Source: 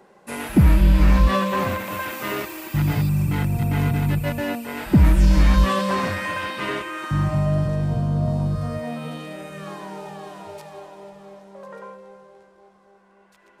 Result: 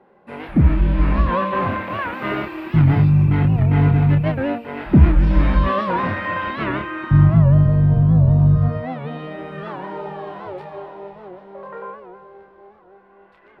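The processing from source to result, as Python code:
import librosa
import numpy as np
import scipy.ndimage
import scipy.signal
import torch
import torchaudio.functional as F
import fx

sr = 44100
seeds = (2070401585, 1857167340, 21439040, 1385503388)

y = fx.low_shelf(x, sr, hz=150.0, db=9.5, at=(6.47, 8.69))
y = fx.rider(y, sr, range_db=4, speed_s=2.0)
y = fx.air_absorb(y, sr, metres=430.0)
y = fx.doubler(y, sr, ms=28.0, db=-5.5)
y = fx.record_warp(y, sr, rpm=78.0, depth_cents=160.0)
y = F.gain(torch.from_numpy(y), 2.5).numpy()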